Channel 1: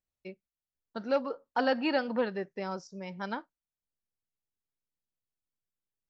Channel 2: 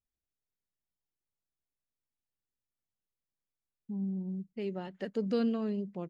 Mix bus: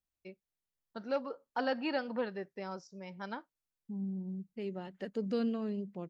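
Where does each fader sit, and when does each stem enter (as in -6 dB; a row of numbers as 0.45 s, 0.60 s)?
-5.5 dB, -3.0 dB; 0.00 s, 0.00 s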